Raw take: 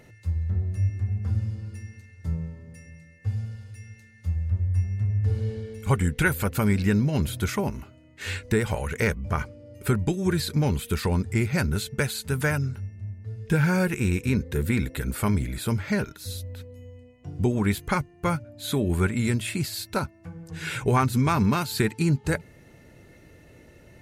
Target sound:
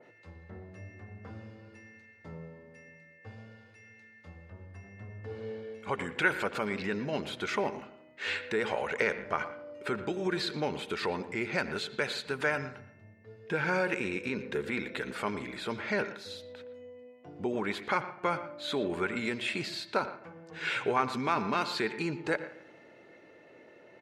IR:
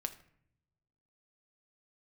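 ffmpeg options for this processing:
-filter_complex "[0:a]tiltshelf=f=1.3k:g=3.5,asplit=2[a][b];[b]adelay=85,lowpass=f=2.7k:p=1,volume=-18dB,asplit=2[c][d];[d]adelay=85,lowpass=f=2.7k:p=1,volume=0.54,asplit=2[e][f];[f]adelay=85,lowpass=f=2.7k:p=1,volume=0.54,asplit=2[g][h];[h]adelay=85,lowpass=f=2.7k:p=1,volume=0.54,asplit=2[i][j];[j]adelay=85,lowpass=f=2.7k:p=1,volume=0.54[k];[a][c][e][g][i][k]amix=inputs=6:normalize=0,alimiter=limit=-14dB:level=0:latency=1:release=72,highpass=440,lowpass=3.5k,asplit=2[l][m];[1:a]atrim=start_sample=2205,lowpass=4k,adelay=117[n];[m][n]afir=irnorm=-1:irlink=0,volume=-13.5dB[o];[l][o]amix=inputs=2:normalize=0,adynamicequalizer=threshold=0.00562:dfrequency=2100:dqfactor=0.7:tfrequency=2100:tqfactor=0.7:attack=5:release=100:ratio=0.375:range=3:mode=boostabove:tftype=highshelf"

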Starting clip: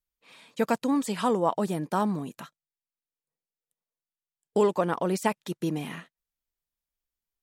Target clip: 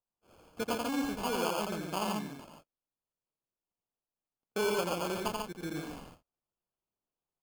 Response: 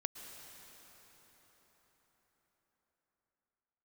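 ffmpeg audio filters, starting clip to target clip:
-filter_complex "[0:a]lowshelf=f=180:g=-7.5,acrusher=samples=23:mix=1:aa=0.000001,asplit=2[a][b];[b]aecho=0:1:85|142:0.708|0.631[c];[a][c]amix=inputs=2:normalize=0,volume=-8.5dB"

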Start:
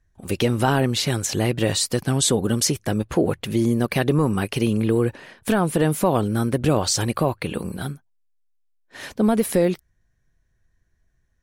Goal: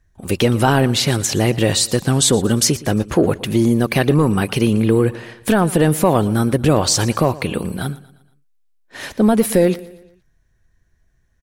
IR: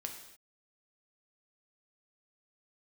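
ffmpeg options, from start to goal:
-af "acontrast=39,aecho=1:1:117|234|351|468:0.112|0.0527|0.0248|0.0116"

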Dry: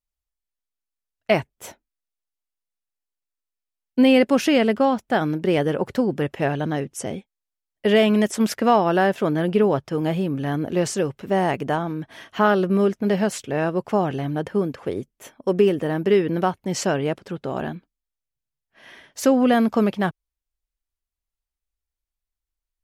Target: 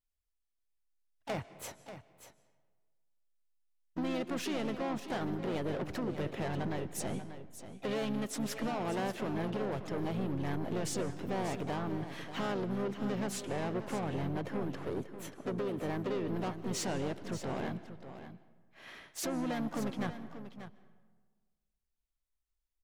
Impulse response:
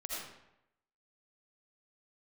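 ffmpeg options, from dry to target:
-filter_complex "[0:a]lowshelf=f=140:g=3.5,acompressor=threshold=-22dB:ratio=5,asoftclip=type=tanh:threshold=-27dB,asplit=4[a][b][c][d];[b]asetrate=29433,aresample=44100,atempo=1.49831,volume=-10dB[e];[c]asetrate=55563,aresample=44100,atempo=0.793701,volume=-8dB[f];[d]asetrate=58866,aresample=44100,atempo=0.749154,volume=-17dB[g];[a][e][f][g]amix=inputs=4:normalize=0,aecho=1:1:587:0.266,asplit=2[h][i];[1:a]atrim=start_sample=2205,asetrate=23814,aresample=44100[j];[i][j]afir=irnorm=-1:irlink=0,volume=-20.5dB[k];[h][k]amix=inputs=2:normalize=0,volume=-6.5dB"

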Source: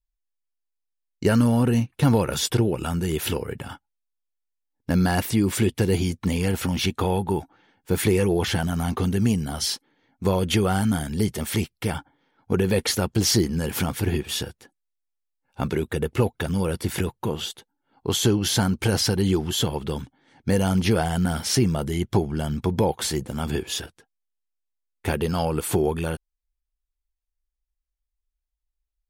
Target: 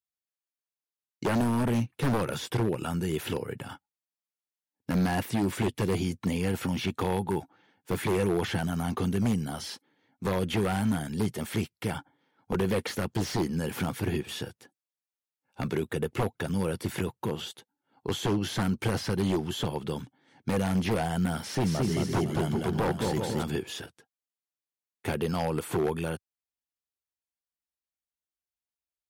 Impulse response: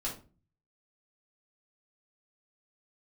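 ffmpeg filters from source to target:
-filter_complex "[0:a]highpass=f=96:w=0.5412,highpass=f=96:w=1.3066,asettb=1/sr,asplit=3[a][b][c];[a]atrim=end=21.394[d];[b]atrim=start=21.39:end=23.43,asetpts=PTS-STARTPTS,afade=t=in:d=0.004:c=qsin,afade=t=out:st=2.036:d=0.004:c=qsin,aecho=1:1:220|385|508.8|601.6|671.2:0.631|0.398|0.251|0.158|0.1,atrim=end_sample=89964[e];[c]atrim=start=23.426[f];[d][e]acrossfade=d=0.004:c1=hsin:c2=qsin[g];[g][f]acrossfade=d=0.004:c1=qsin:c2=hsin,aeval=exprs='0.168*(abs(mod(val(0)/0.168+3,4)-2)-1)':c=same,acrossover=split=2800[h][i];[i]acompressor=threshold=-35dB:ratio=4:attack=1:release=60[j];[h][j]amix=inputs=2:normalize=0,volume=-4dB"

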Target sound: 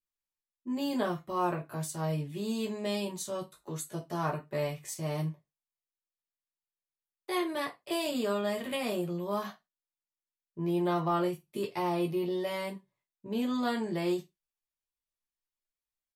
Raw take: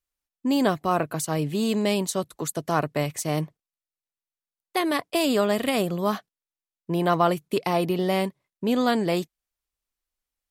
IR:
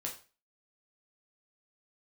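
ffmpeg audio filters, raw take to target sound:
-filter_complex "[0:a]atempo=0.65[a];[1:a]atrim=start_sample=2205,afade=t=out:st=0.37:d=0.01,atrim=end_sample=16758,asetrate=79380,aresample=44100[b];[a][b]afir=irnorm=-1:irlink=0,volume=-3.5dB"

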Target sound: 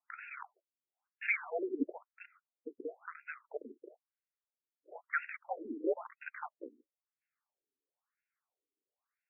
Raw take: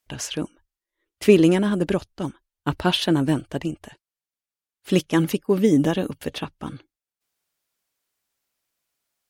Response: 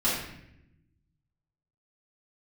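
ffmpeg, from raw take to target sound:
-filter_complex "[0:a]asettb=1/sr,asplit=3[a][b][c];[a]atrim=end=1.854[d];[b]atrim=start=1.85:end=3.49,asetpts=PTS-STARTPTS,afade=t=in:d=0.004:c=qsin,afade=t=out:st=1.636:d=0.004:c=qsin,acrossover=split=220|1600[e][f][g];[e]acompressor=threshold=-36dB:ratio=4[h];[f]acompressor=threshold=-33dB:ratio=4[i];[g]acompressor=threshold=-36dB:ratio=4[j];[h][i][j]amix=inputs=3:normalize=0[k];[c]atrim=start=3.486[l];[d][k]acrossfade=d=0.004:c1=hsin:c2=qsin[m];[m][l]acrossfade=d=0.004:c1=qsin:c2=hsin,asplit=2[n][o];[o]acrusher=bits=3:mix=0:aa=0.000001,volume=-11dB[p];[n][p]amix=inputs=2:normalize=0,highpass=f=340:t=q:w=0.5412,highpass=f=340:t=q:w=1.307,lowpass=f=2.9k:t=q:w=0.5176,lowpass=f=2.9k:t=q:w=0.7071,lowpass=f=2.9k:t=q:w=1.932,afreqshift=-250,afftfilt=real='re*between(b*sr/1024,320*pow(2000/320,0.5+0.5*sin(2*PI*1*pts/sr))/1.41,320*pow(2000/320,0.5+0.5*sin(2*PI*1*pts/sr))*1.41)':imag='im*between(b*sr/1024,320*pow(2000/320,0.5+0.5*sin(2*PI*1*pts/sr))/1.41,320*pow(2000/320,0.5+0.5*sin(2*PI*1*pts/sr))*1.41)':win_size=1024:overlap=0.75,volume=-3dB"

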